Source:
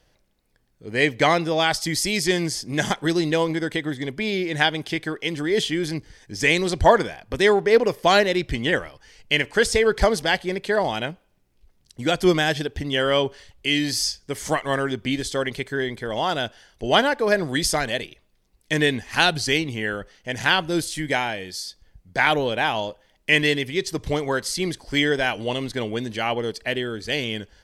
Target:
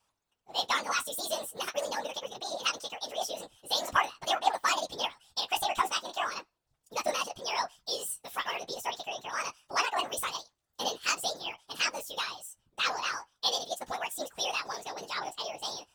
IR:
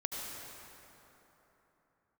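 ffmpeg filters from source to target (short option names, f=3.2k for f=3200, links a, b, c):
-af "bass=f=250:g=-13,treble=f=4k:g=-2,asetrate=76440,aresample=44100,flanger=delay=9.2:depth=6.4:regen=25:speed=0.42:shape=sinusoidal,afftfilt=real='hypot(re,im)*cos(2*PI*random(0))':imag='hypot(re,im)*sin(2*PI*random(1))':win_size=512:overlap=0.75"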